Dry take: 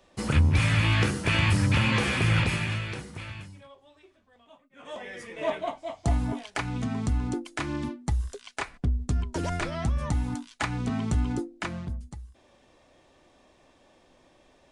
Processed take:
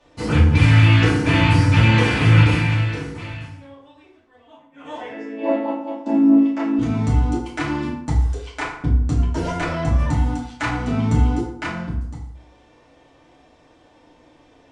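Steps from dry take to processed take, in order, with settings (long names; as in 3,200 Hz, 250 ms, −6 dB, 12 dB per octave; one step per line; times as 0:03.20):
0:05.08–0:06.79: channel vocoder with a chord as carrier major triad, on A3
high-frequency loss of the air 56 metres
feedback delay network reverb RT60 0.72 s, low-frequency decay 0.95×, high-frequency decay 0.65×, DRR −6.5 dB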